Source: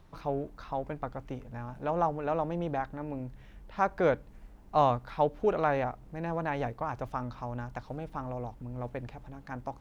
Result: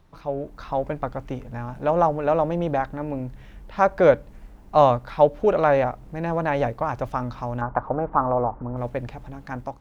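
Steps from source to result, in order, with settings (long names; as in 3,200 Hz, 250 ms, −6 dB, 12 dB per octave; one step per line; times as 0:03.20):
dynamic equaliser 570 Hz, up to +7 dB, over −46 dBFS, Q 7.1
automatic gain control gain up to 8 dB
0:07.61–0:08.77: drawn EQ curve 150 Hz 0 dB, 1,200 Hz +12 dB, 4,300 Hz −28 dB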